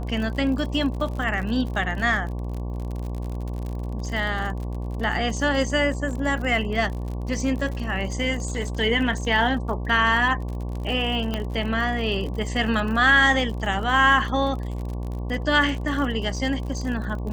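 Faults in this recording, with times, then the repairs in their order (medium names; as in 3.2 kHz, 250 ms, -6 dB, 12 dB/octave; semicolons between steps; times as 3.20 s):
buzz 60 Hz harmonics 19 -29 dBFS
crackle 53 per s -31 dBFS
11.34 s: pop -13 dBFS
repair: de-click; de-hum 60 Hz, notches 19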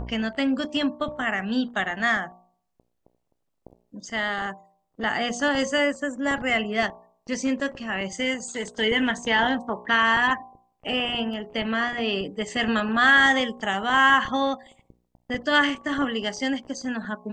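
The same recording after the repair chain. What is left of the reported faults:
11.34 s: pop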